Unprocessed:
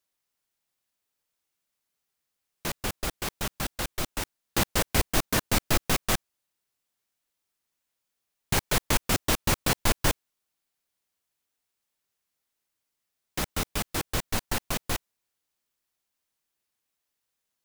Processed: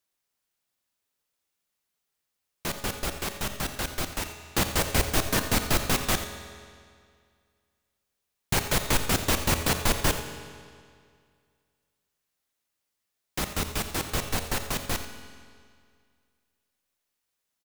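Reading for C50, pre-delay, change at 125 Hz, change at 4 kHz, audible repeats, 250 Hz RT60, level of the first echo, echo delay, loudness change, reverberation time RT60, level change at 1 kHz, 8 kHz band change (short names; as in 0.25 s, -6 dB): 7.5 dB, 9 ms, +1.0 dB, +1.0 dB, 1, 2.1 s, -13.0 dB, 86 ms, +0.5 dB, 2.1 s, +1.0 dB, +0.5 dB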